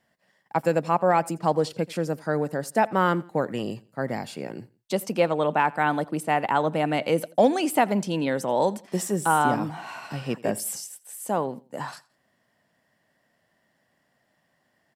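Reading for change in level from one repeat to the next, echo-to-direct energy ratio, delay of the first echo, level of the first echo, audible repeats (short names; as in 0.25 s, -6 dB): -9.0 dB, -22.0 dB, 85 ms, -22.5 dB, 2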